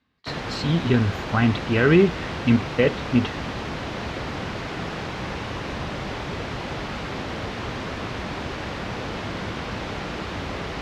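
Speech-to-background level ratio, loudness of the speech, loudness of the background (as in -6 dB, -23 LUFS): 9.0 dB, -21.5 LUFS, -30.5 LUFS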